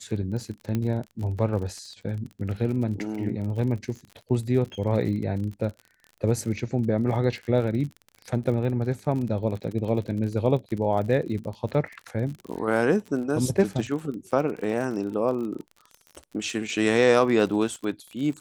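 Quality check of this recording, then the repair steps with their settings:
surface crackle 45 per second −33 dBFS
0:00.75: click −15 dBFS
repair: click removal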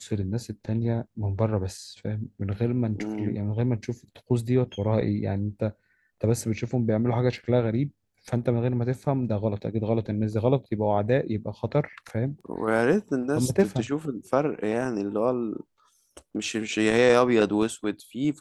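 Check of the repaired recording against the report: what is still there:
none of them is left

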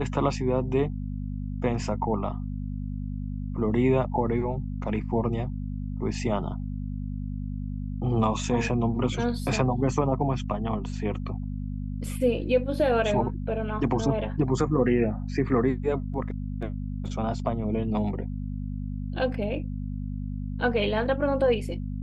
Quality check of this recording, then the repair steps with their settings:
mains hum 50 Hz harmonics 5 −32 dBFS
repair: hum removal 50 Hz, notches 5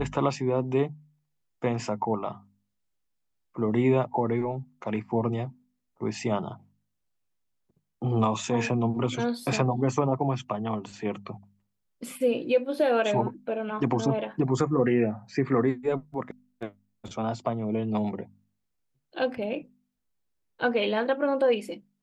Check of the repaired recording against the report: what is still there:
none of them is left

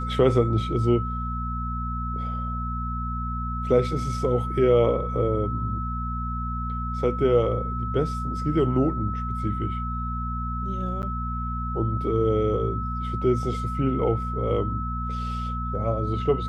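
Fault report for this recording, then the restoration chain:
mains hum 60 Hz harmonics 4 −30 dBFS
whistle 1,300 Hz −31 dBFS
0:11.02–0:11.03: drop-out 9.2 ms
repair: notch filter 1,300 Hz, Q 30
hum removal 60 Hz, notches 4
repair the gap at 0:11.02, 9.2 ms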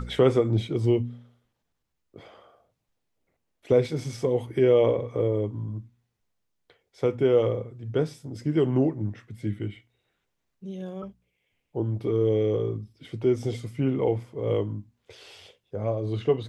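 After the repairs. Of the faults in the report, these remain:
none of them is left

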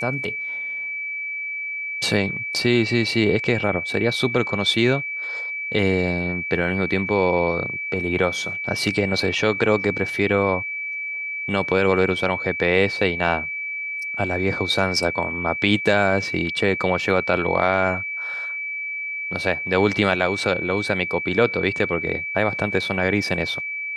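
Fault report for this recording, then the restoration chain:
whistle 2,300 Hz −26 dBFS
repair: notch filter 2,300 Hz, Q 30

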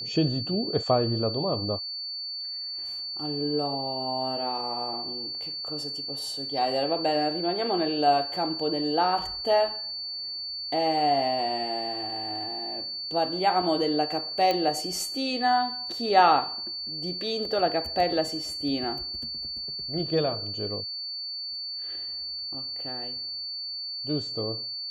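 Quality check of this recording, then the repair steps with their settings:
whistle 4,500 Hz −32 dBFS
0:14.51: click −13 dBFS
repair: click removal
notch filter 4,500 Hz, Q 30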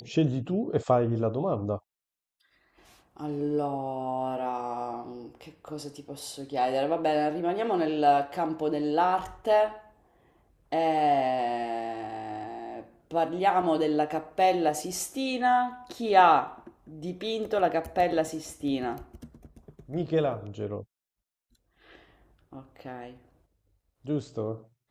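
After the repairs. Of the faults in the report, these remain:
none of them is left

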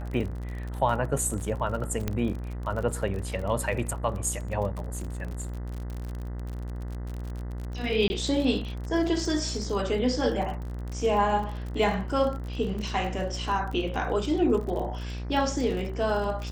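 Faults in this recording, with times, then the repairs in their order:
mains buzz 60 Hz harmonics 34 −34 dBFS
surface crackle 38 per second −33 dBFS
0:02.08: click −14 dBFS
0:08.08–0:08.10: drop-out 20 ms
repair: click removal
hum removal 60 Hz, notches 34
repair the gap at 0:08.08, 20 ms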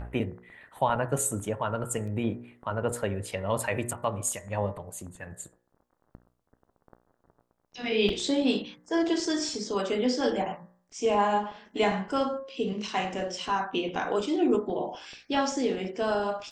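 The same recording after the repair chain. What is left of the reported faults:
0:02.08: click

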